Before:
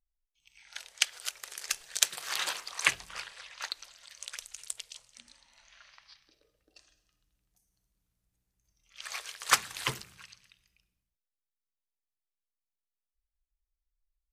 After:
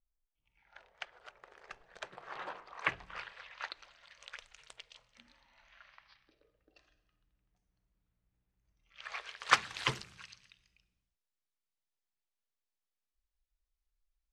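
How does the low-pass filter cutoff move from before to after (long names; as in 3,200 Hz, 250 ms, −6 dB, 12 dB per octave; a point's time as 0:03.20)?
0:02.57 1,000 Hz
0:03.24 2,400 Hz
0:09.11 2,400 Hz
0:10.05 6,100 Hz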